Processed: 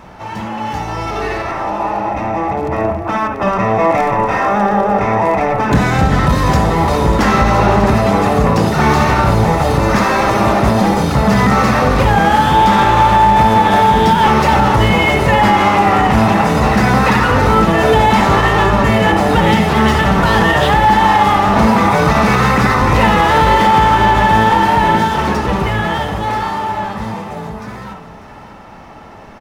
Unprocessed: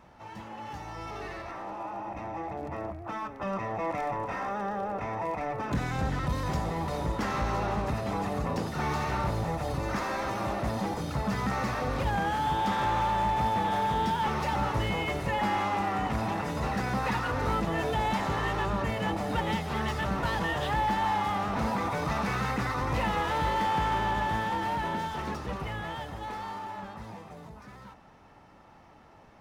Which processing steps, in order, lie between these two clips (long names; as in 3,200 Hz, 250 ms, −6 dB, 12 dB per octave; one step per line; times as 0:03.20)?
single-tap delay 594 ms −12.5 dB
on a send at −5 dB: convolution reverb, pre-delay 54 ms
on the sum: boost into a limiter +18.5 dB
level −1 dB